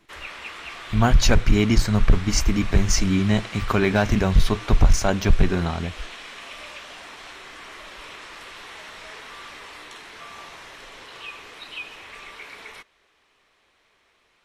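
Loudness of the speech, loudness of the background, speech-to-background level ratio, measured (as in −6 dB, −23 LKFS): −21.5 LKFS, −37.5 LKFS, 16.0 dB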